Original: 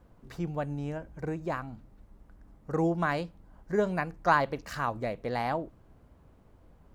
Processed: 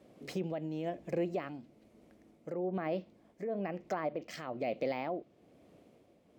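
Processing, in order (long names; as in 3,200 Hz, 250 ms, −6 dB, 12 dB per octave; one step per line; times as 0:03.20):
treble cut that deepens with the level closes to 1,300 Hz, closed at −24.5 dBFS
high-pass filter 230 Hz 12 dB per octave
flat-topped bell 1,100 Hz −11.5 dB 1.3 octaves
speech leveller 2 s
brickwall limiter −29.5 dBFS, peak gain reduction 11.5 dB
shaped tremolo triangle 1 Hz, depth 55%
wrong playback speed 44.1 kHz file played as 48 kHz
linearly interpolated sample-rate reduction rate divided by 2×
level +5.5 dB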